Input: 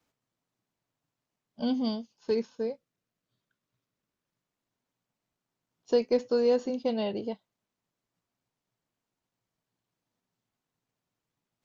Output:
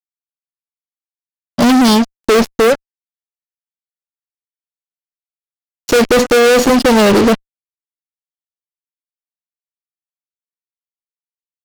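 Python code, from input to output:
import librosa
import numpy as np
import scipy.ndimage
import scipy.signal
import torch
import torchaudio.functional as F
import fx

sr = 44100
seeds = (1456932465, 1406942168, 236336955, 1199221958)

y = fx.fuzz(x, sr, gain_db=46.0, gate_db=-49.0)
y = F.gain(torch.from_numpy(y), 5.5).numpy()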